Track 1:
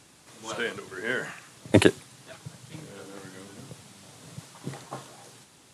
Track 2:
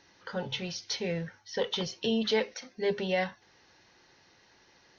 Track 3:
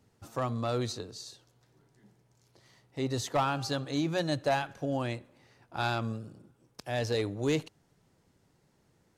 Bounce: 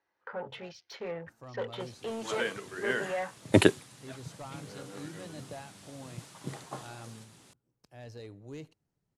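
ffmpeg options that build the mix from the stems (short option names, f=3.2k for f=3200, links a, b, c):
-filter_complex "[0:a]adelay=1800,volume=-2.5dB[a];[1:a]afwtdn=0.00631,asoftclip=type=tanh:threshold=-27dB,acrossover=split=400 2000:gain=0.224 1 0.158[b][c][d];[b][c][d]amix=inputs=3:normalize=0,volume=1.5dB[e];[2:a]lowshelf=f=290:g=6,bandreject=f=3.5k:w=12,adelay=1050,volume=-18dB[f];[a][e][f]amix=inputs=3:normalize=0"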